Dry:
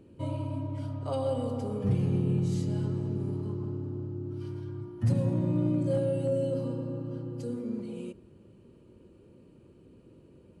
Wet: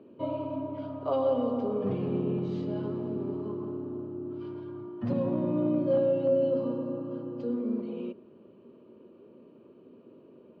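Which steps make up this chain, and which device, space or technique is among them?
kitchen radio (speaker cabinet 220–3600 Hz, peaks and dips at 240 Hz +7 dB, 410 Hz +6 dB, 630 Hz +8 dB, 1100 Hz +8 dB, 2000 Hz -4 dB)

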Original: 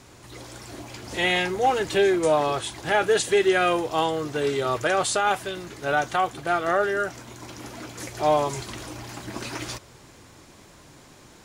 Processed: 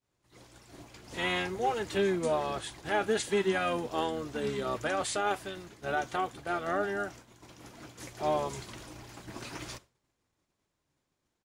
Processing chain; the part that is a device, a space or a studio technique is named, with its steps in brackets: expander -35 dBFS; octave pedal (harmoniser -12 st -8 dB); gain -9 dB

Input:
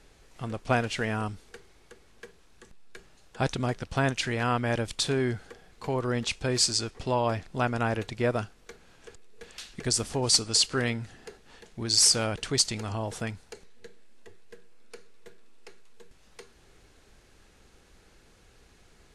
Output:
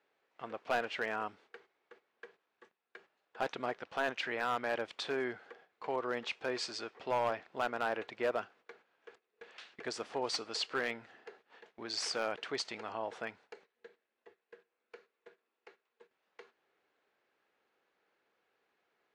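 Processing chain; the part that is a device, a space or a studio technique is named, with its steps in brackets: walkie-talkie (BPF 470–2500 Hz; hard clip -23 dBFS, distortion -13 dB; gate -57 dBFS, range -11 dB); gain -2.5 dB

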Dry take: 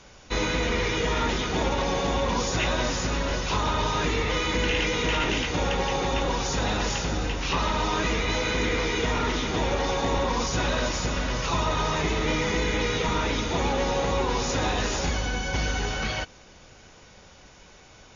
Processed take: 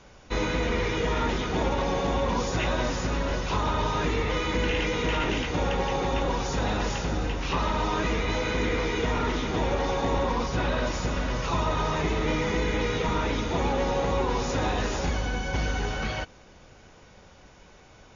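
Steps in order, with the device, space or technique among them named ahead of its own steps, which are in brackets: behind a face mask (high shelf 2500 Hz -7.5 dB); 10.33–10.87 LPF 5100 Hz 12 dB/oct

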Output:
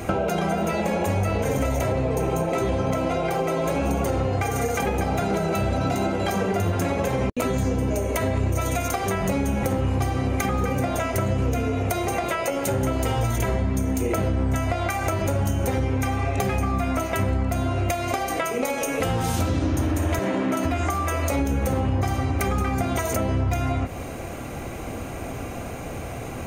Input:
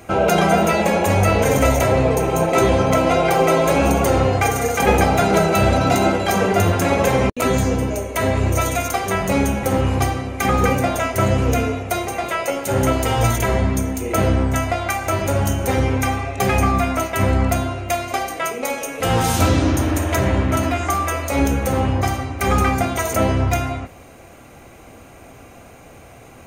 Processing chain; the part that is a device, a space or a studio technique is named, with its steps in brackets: 20.19–20.65 HPF 190 Hz 24 dB/oct; serial compression, peaks first (compressor, threshold -25 dBFS, peak gain reduction 14.5 dB; compressor 2.5:1, threshold -33 dBFS, peak gain reduction 7.5 dB); low shelf 490 Hz +5 dB; gain +7 dB

